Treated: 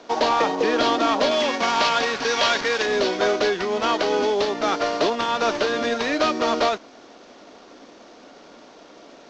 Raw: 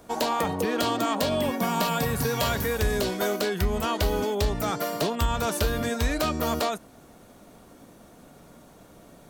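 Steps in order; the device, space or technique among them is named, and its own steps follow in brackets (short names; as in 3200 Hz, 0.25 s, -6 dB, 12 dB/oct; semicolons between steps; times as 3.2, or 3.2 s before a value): early wireless headset (HPF 270 Hz 24 dB/oct; CVSD 32 kbps); 1.31–2.86 tilt shelf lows -4.5 dB; gain +7 dB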